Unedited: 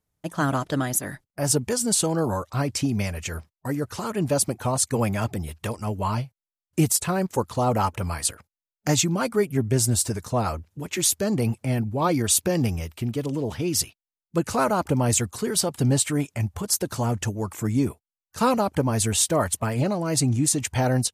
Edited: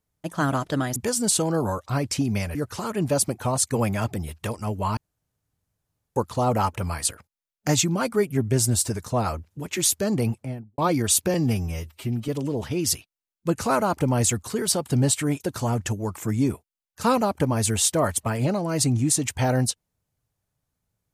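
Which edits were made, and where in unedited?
0.96–1.6 cut
3.19–3.75 cut
6.17–7.36 room tone
11.39–11.98 studio fade out
12.54–13.17 stretch 1.5×
16.29–16.77 cut

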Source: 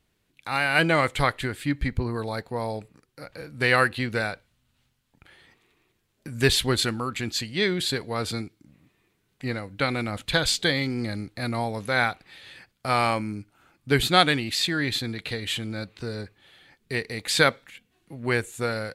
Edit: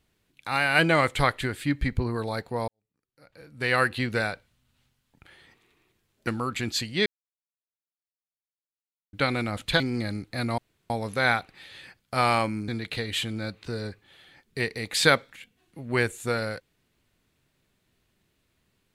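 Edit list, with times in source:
2.68–3.97 fade in quadratic
6.27–6.87 cut
7.66–9.73 mute
10.4–10.84 cut
11.62 insert room tone 0.32 s
13.4–15.02 cut

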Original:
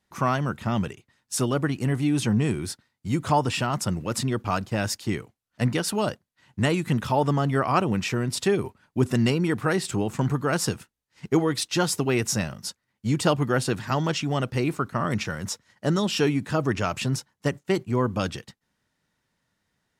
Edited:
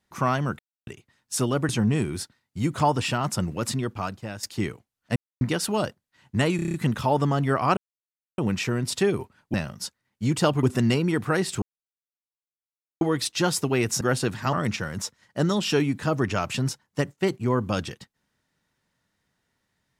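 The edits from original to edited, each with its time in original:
0.59–0.87 mute
1.69–2.18 cut
4.11–4.92 fade out, to -13 dB
5.65 insert silence 0.25 s
6.8 stutter 0.03 s, 7 plays
7.83 insert silence 0.61 s
9.98–11.37 mute
12.37–13.46 move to 8.99
13.98–15 cut

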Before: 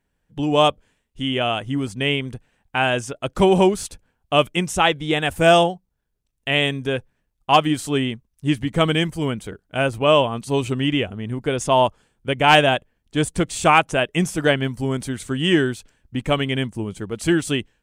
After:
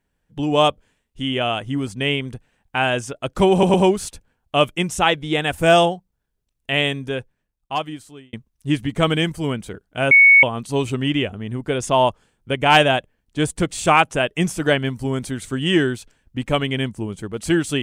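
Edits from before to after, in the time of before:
3.52 stutter 0.11 s, 3 plays
6.53–8.11 fade out
9.89–10.21 bleep 2220 Hz -6.5 dBFS

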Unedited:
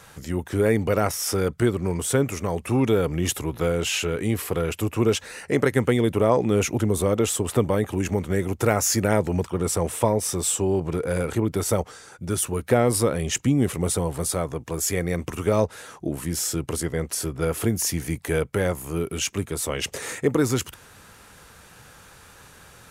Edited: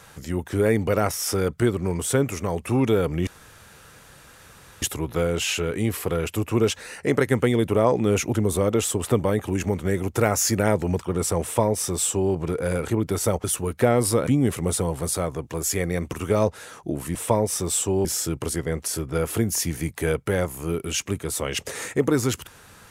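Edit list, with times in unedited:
3.27 insert room tone 1.55 s
9.88–10.78 copy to 16.32
11.89–12.33 cut
13.16–13.44 cut

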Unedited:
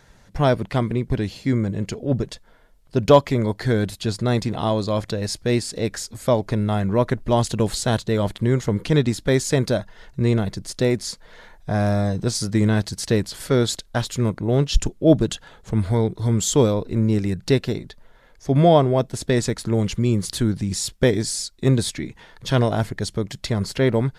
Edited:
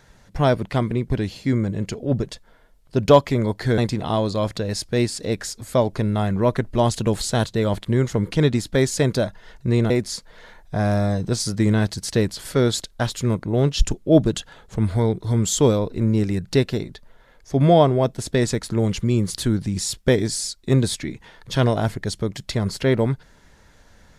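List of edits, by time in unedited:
3.78–4.31 cut
10.43–10.85 cut

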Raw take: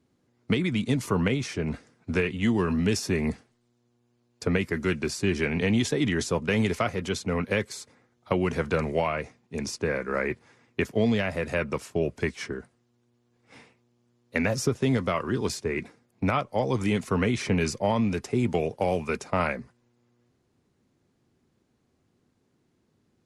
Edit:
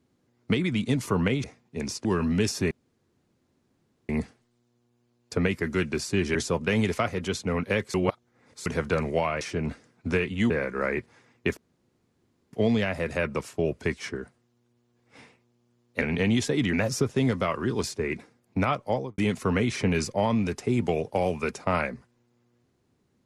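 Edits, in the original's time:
1.44–2.53 swap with 9.22–9.83
3.19 insert room tone 1.38 s
5.45–6.16 move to 14.39
7.75–8.47 reverse
10.9 insert room tone 0.96 s
16.55–16.84 studio fade out

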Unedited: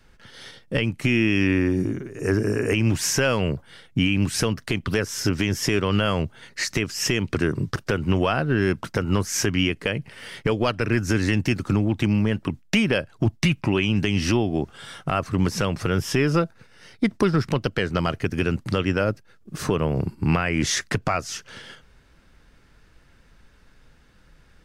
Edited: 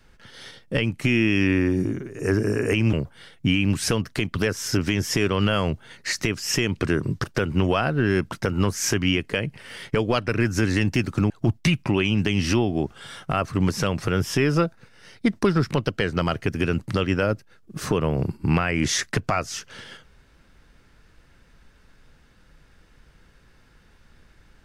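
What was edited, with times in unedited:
2.93–3.45 cut
11.82–13.08 cut

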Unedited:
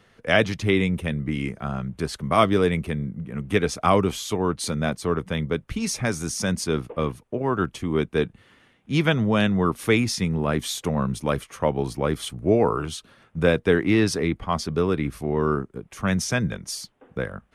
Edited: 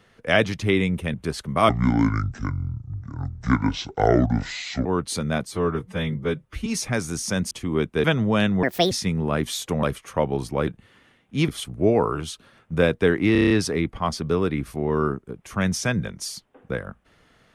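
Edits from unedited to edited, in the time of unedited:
1.14–1.89 cut
2.44–4.37 speed 61%
4.99–5.78 stretch 1.5×
6.63–7.7 cut
8.23–9.04 move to 12.13
9.63–10.07 speed 155%
10.99–11.29 cut
13.97 stutter 0.03 s, 7 plays

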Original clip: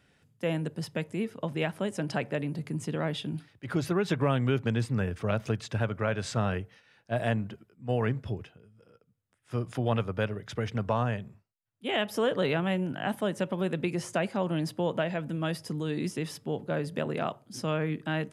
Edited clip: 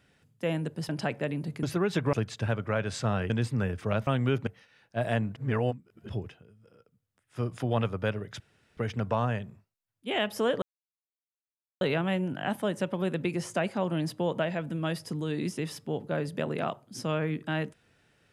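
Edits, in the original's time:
0.89–2 cut
2.74–3.78 cut
4.28–4.68 swap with 5.45–6.62
7.51–8.24 reverse
10.55 insert room tone 0.37 s
12.4 insert silence 1.19 s

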